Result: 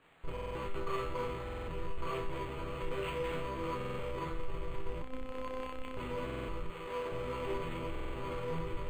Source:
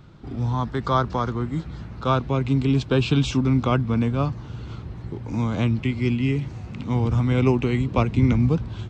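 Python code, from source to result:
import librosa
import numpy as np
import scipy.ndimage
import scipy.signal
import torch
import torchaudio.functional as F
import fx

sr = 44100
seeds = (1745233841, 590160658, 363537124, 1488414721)

p1 = fx.octave_divider(x, sr, octaves=1, level_db=-5.0)
p2 = fx.schmitt(p1, sr, flips_db=-31.0)
p3 = fx.bass_treble(p2, sr, bass_db=-14, treble_db=3, at=(6.7, 7.12))
p4 = fx.quant_dither(p3, sr, seeds[0], bits=6, dither='triangular')
p5 = p3 + (p4 * 10.0 ** (-12.0 / 20.0))
p6 = fx.fixed_phaser(p5, sr, hz=1100.0, stages=8)
p7 = fx.resonator_bank(p6, sr, root=52, chord='minor', decay_s=0.57)
p8 = fx.robotise(p7, sr, hz=258.0, at=(5.02, 5.97))
p9 = fx.buffer_glitch(p8, sr, at_s=(0.32, 1.45, 3.76, 6.25, 7.91), block=2048, repeats=4)
p10 = np.interp(np.arange(len(p9)), np.arange(len(p9))[::8], p9[::8])
y = p10 * 10.0 ** (7.5 / 20.0)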